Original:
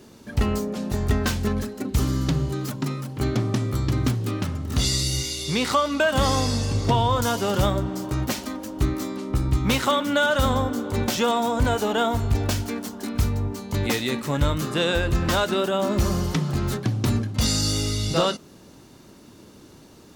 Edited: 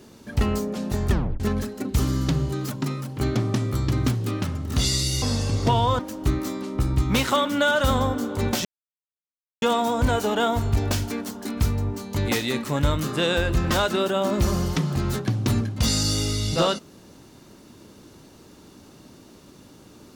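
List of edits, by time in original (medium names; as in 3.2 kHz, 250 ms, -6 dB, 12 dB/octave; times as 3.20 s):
1.10 s: tape stop 0.30 s
5.22–6.44 s: delete
7.21–8.54 s: delete
11.20 s: insert silence 0.97 s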